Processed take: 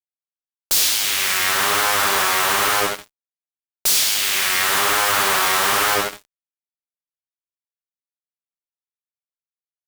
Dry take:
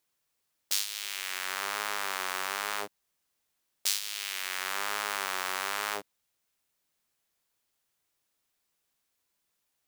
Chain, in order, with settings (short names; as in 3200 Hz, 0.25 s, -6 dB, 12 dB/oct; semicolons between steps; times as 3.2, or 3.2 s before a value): Schroeder reverb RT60 0.85 s, combs from 29 ms, DRR 6 dB; fuzz box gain 37 dB, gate -46 dBFS